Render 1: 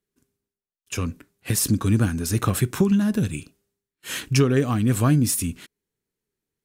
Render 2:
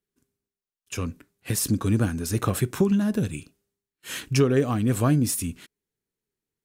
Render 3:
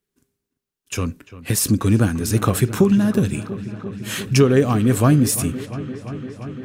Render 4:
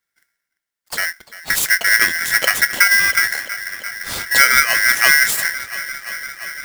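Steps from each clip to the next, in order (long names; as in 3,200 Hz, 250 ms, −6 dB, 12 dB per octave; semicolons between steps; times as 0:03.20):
dynamic equaliser 540 Hz, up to +5 dB, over −32 dBFS, Q 0.94; level −3.5 dB
delay with a low-pass on its return 344 ms, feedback 83%, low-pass 3,400 Hz, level −16 dB; level +6 dB
ring modulator with a square carrier 1,800 Hz; level +1.5 dB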